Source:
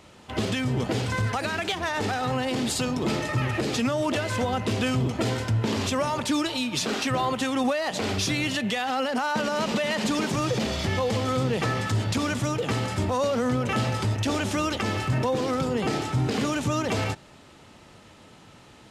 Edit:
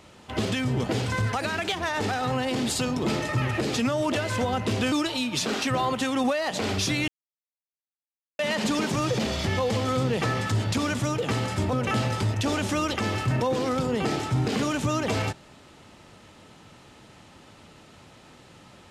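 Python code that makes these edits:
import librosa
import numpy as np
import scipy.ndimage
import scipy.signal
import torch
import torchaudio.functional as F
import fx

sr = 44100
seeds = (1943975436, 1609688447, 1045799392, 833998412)

y = fx.edit(x, sr, fx.cut(start_s=4.92, length_s=1.4),
    fx.silence(start_s=8.48, length_s=1.31),
    fx.cut(start_s=13.13, length_s=0.42), tone=tone)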